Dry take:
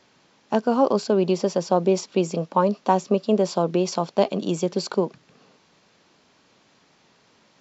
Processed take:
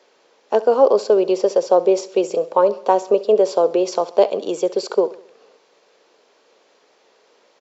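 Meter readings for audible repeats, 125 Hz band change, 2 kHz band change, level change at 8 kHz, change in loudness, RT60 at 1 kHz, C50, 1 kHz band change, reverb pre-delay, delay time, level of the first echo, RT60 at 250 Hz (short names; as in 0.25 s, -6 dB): 3, under -10 dB, +0.5 dB, n/a, +5.0 dB, none, none, +3.0 dB, none, 67 ms, -18.0 dB, none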